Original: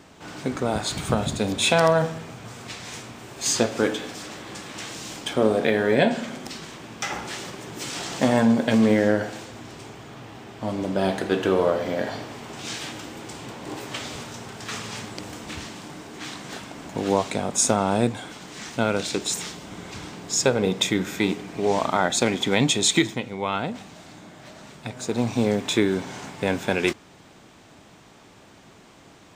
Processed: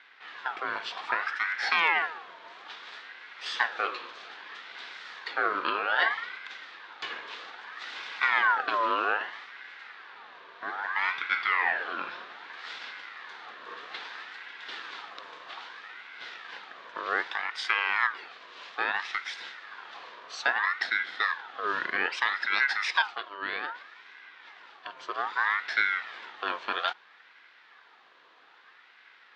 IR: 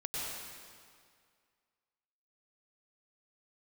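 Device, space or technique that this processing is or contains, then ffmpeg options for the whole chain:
voice changer toy: -af "aeval=exprs='val(0)*sin(2*PI*1300*n/s+1300*0.4/0.62*sin(2*PI*0.62*n/s))':channel_layout=same,highpass=470,equalizer=frequency=600:width_type=q:width=4:gain=-8,equalizer=frequency=1700:width_type=q:width=4:gain=4,equalizer=frequency=3600:width_type=q:width=4:gain=4,lowpass=frequency=4100:width=0.5412,lowpass=frequency=4100:width=1.3066,volume=-4dB"

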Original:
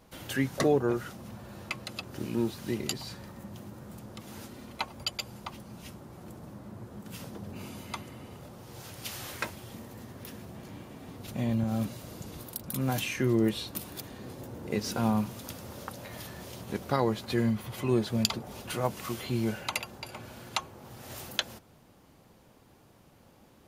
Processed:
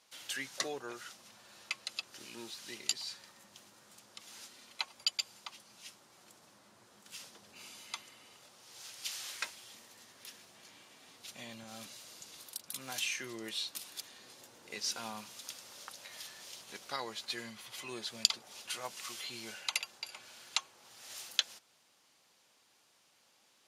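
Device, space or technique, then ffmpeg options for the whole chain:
piezo pickup straight into a mixer: -af "lowpass=5900,aderivative,volume=7dB"

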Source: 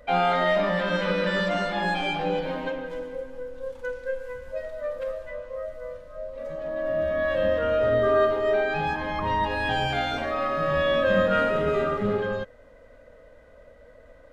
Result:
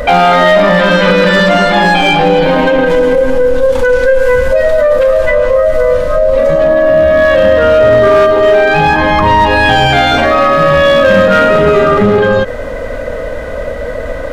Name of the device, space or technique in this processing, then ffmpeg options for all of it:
loud club master: -af "acompressor=threshold=-25dB:ratio=2.5,asoftclip=type=hard:threshold=-22dB,alimiter=level_in=33dB:limit=-1dB:release=50:level=0:latency=1,volume=-1dB"

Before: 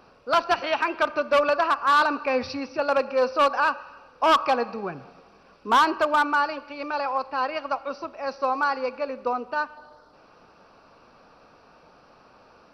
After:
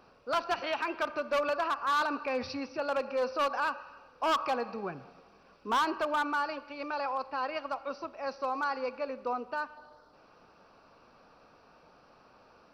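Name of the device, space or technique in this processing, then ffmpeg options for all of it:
clipper into limiter: -af "asoftclip=type=hard:threshold=-15.5dB,alimiter=limit=-18.5dB:level=0:latency=1:release=38,volume=-5.5dB"

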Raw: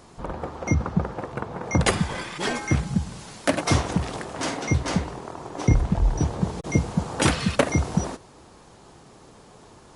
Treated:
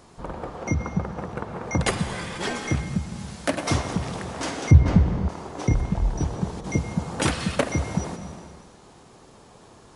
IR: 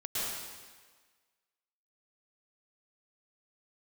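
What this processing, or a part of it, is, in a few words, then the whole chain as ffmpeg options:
ducked reverb: -filter_complex "[0:a]asplit=3[link_01][link_02][link_03];[1:a]atrim=start_sample=2205[link_04];[link_02][link_04]afir=irnorm=-1:irlink=0[link_05];[link_03]apad=whole_len=439086[link_06];[link_05][link_06]sidechaincompress=threshold=-23dB:ratio=8:attack=16:release=604,volume=-8.5dB[link_07];[link_01][link_07]amix=inputs=2:normalize=0,asettb=1/sr,asplit=3[link_08][link_09][link_10];[link_08]atrim=end=4.714[link_11];[link_09]atrim=start=4.71:end=5.29,asetpts=PTS-STARTPTS,afade=type=in:duration=0.004:curve=qsin,afade=type=out:start_time=0.576:duration=0.004:curve=qsin,aemphasis=mode=reproduction:type=riaa[link_12];[link_10]atrim=start=5.286[link_13];[link_11][link_12]acrossfade=duration=0.004:curve1=hsin:curve2=qsin[link_14];[link_14][link_13]acrossfade=duration=0.004:curve1=qsin:curve2=hsin,volume=-3.5dB"

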